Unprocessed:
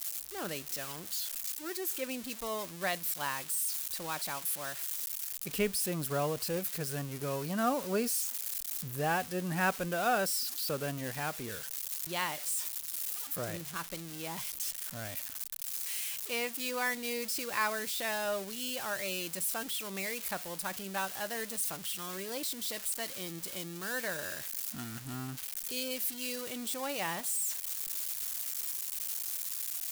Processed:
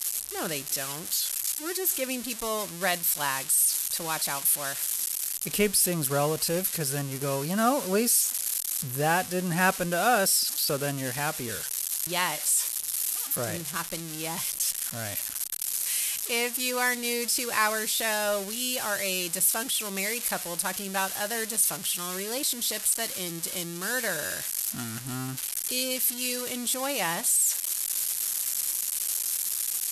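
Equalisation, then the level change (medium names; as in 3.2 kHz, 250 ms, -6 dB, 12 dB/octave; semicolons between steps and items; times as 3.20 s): brick-wall FIR low-pass 13 kHz; treble shelf 6.4 kHz +7.5 dB; +6.0 dB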